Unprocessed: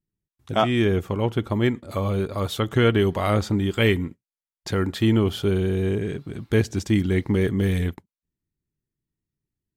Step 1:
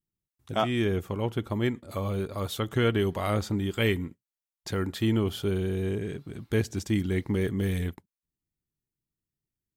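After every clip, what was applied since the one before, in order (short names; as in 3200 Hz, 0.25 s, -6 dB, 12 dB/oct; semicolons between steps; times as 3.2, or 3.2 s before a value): high shelf 8300 Hz +7 dB; gain -6 dB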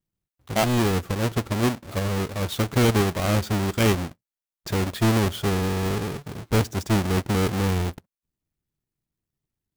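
half-waves squared off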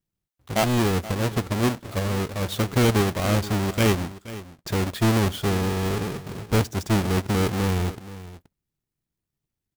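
echo 0.476 s -16 dB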